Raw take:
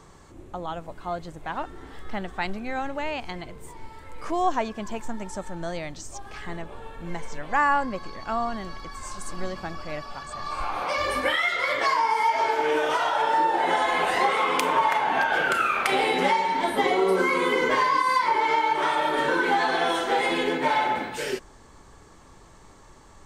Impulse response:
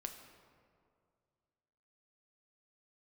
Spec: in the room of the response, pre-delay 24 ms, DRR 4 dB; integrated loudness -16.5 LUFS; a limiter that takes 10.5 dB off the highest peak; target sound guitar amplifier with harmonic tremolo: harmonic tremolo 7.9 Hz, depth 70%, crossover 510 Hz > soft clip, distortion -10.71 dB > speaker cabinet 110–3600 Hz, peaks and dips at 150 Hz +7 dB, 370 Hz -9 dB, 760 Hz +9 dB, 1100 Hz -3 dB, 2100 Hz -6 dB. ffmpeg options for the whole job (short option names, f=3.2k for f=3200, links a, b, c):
-filter_complex "[0:a]alimiter=limit=-18dB:level=0:latency=1,asplit=2[a][b];[1:a]atrim=start_sample=2205,adelay=24[c];[b][c]afir=irnorm=-1:irlink=0,volume=-1.5dB[d];[a][d]amix=inputs=2:normalize=0,acrossover=split=510[e][f];[e]aeval=exprs='val(0)*(1-0.7/2+0.7/2*cos(2*PI*7.9*n/s))':c=same[g];[f]aeval=exprs='val(0)*(1-0.7/2-0.7/2*cos(2*PI*7.9*n/s))':c=same[h];[g][h]amix=inputs=2:normalize=0,asoftclip=threshold=-28dB,highpass=110,equalizer=f=150:t=q:w=4:g=7,equalizer=f=370:t=q:w=4:g=-9,equalizer=f=760:t=q:w=4:g=9,equalizer=f=1.1k:t=q:w=4:g=-3,equalizer=f=2.1k:t=q:w=4:g=-6,lowpass=f=3.6k:w=0.5412,lowpass=f=3.6k:w=1.3066,volume=16.5dB"